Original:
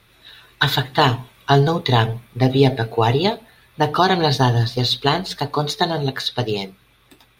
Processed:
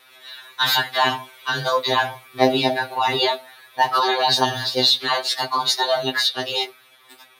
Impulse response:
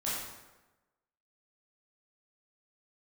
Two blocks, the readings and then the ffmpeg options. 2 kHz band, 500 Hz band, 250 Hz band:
+1.0 dB, -3.0 dB, -7.5 dB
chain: -af "highpass=580,alimiter=level_in=12.5dB:limit=-1dB:release=50:level=0:latency=1,afftfilt=real='re*2.45*eq(mod(b,6),0)':imag='im*2.45*eq(mod(b,6),0)':win_size=2048:overlap=0.75,volume=-4dB"

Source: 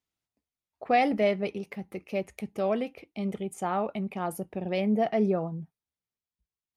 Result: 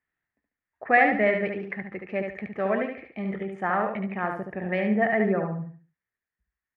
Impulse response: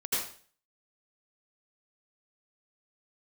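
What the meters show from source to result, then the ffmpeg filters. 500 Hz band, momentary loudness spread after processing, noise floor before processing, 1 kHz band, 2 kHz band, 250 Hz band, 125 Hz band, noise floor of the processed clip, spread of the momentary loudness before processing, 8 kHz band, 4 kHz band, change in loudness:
+2.0 dB, 14 LU, under -85 dBFS, +3.0 dB, +12.0 dB, +1.5 dB, +2.0 dB, under -85 dBFS, 13 LU, under -25 dB, -5.0 dB, +3.5 dB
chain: -filter_complex "[0:a]lowpass=f=1.8k:t=q:w=7.7,asplit=2[a][b];[b]aecho=0:1:72|144|216|288:0.562|0.18|0.0576|0.0184[c];[a][c]amix=inputs=2:normalize=0"

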